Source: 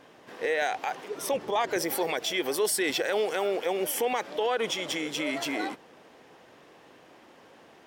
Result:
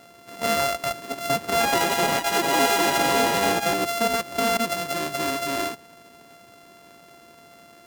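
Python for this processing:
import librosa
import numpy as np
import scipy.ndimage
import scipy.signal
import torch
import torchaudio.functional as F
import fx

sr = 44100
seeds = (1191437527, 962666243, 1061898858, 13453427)

y = np.r_[np.sort(x[:len(x) // 64 * 64].reshape(-1, 64), axis=1).ravel(), x[len(x) // 64 * 64:]]
y = fx.echo_pitch(y, sr, ms=133, semitones=3, count=2, db_per_echo=-3.0, at=(1.4, 4.02))
y = y * 10.0 ** (4.5 / 20.0)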